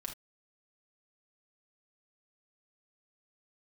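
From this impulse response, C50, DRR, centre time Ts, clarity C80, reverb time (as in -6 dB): 9.0 dB, 0.0 dB, 15 ms, 19.5 dB, not exponential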